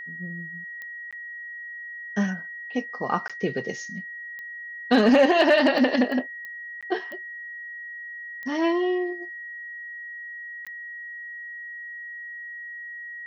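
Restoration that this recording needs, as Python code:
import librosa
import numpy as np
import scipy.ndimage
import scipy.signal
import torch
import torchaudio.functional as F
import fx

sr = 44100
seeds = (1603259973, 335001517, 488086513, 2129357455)

y = fx.fix_declip(x, sr, threshold_db=-9.5)
y = fx.fix_declick_ar(y, sr, threshold=10.0)
y = fx.notch(y, sr, hz=1900.0, q=30.0)
y = fx.fix_interpolate(y, sr, at_s=(1.11, 3.28, 6.81, 10.65), length_ms=16.0)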